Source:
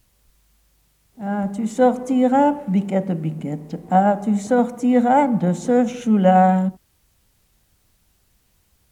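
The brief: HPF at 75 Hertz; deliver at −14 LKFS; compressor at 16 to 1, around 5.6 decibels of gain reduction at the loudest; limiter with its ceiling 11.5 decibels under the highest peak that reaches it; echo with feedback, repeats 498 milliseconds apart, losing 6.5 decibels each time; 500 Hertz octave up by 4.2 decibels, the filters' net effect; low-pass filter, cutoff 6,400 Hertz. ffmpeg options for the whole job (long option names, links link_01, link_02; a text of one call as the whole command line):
ffmpeg -i in.wav -af "highpass=75,lowpass=6400,equalizer=frequency=500:width_type=o:gain=4.5,acompressor=threshold=-12dB:ratio=16,alimiter=limit=-17.5dB:level=0:latency=1,aecho=1:1:498|996|1494|1992|2490|2988:0.473|0.222|0.105|0.0491|0.0231|0.0109,volume=11dB" out.wav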